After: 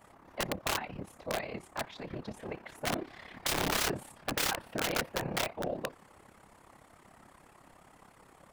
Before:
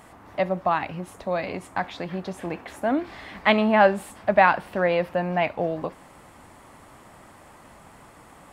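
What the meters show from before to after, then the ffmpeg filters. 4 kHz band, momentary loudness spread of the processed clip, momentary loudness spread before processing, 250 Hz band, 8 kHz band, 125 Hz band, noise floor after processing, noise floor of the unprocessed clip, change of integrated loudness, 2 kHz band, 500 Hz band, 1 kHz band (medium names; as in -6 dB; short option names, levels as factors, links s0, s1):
+0.5 dB, 12 LU, 15 LU, -13.0 dB, no reading, -8.5 dB, -60 dBFS, -50 dBFS, -10.5 dB, -10.0 dB, -14.5 dB, -14.5 dB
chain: -af "afftfilt=real='hypot(re,im)*cos(2*PI*random(0))':imag='hypot(re,im)*sin(2*PI*random(1))':win_size=512:overlap=0.75,aeval=exprs='(mod(13.3*val(0)+1,2)-1)/13.3':c=same,tremolo=f=34:d=0.667"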